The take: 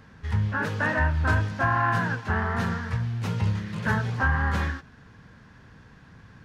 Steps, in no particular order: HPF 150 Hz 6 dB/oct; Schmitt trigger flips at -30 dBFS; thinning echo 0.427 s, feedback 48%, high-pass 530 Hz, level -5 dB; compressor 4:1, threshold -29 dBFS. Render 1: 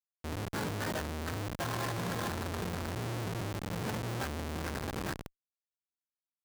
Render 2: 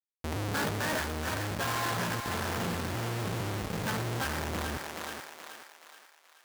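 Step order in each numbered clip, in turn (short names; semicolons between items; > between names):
thinning echo > compressor > Schmitt trigger > HPF; Schmitt trigger > thinning echo > compressor > HPF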